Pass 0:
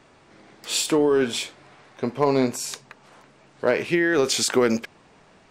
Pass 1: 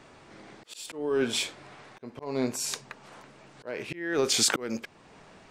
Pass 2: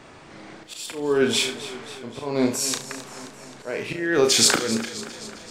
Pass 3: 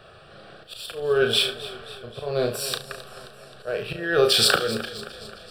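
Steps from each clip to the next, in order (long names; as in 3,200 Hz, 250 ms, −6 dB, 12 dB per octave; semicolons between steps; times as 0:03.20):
volume swells 609 ms; level +1.5 dB
flutter between parallel walls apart 6 metres, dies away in 0.3 s; feedback echo with a swinging delay time 264 ms, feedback 62%, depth 65 cents, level −14.5 dB; level +6 dB
in parallel at −7.5 dB: slack as between gear wheels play −25 dBFS; on the sum: phaser with its sweep stopped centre 1,400 Hz, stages 8; level +1 dB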